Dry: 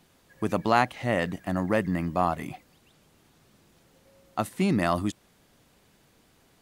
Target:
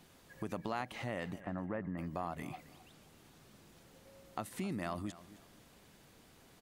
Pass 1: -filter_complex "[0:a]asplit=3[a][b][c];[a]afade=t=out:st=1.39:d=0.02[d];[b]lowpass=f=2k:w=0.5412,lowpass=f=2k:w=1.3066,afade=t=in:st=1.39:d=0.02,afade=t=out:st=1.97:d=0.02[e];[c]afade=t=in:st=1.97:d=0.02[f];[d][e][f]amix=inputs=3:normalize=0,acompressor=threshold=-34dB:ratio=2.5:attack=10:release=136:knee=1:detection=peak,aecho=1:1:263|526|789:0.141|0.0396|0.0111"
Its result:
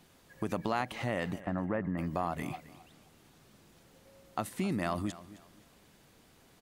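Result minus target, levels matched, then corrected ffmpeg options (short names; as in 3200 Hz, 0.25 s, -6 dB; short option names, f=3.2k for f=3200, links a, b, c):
compressor: peak gain reduction -6.5 dB
-filter_complex "[0:a]asplit=3[a][b][c];[a]afade=t=out:st=1.39:d=0.02[d];[b]lowpass=f=2k:w=0.5412,lowpass=f=2k:w=1.3066,afade=t=in:st=1.39:d=0.02,afade=t=out:st=1.97:d=0.02[e];[c]afade=t=in:st=1.97:d=0.02[f];[d][e][f]amix=inputs=3:normalize=0,acompressor=threshold=-44.5dB:ratio=2.5:attack=10:release=136:knee=1:detection=peak,aecho=1:1:263|526|789:0.141|0.0396|0.0111"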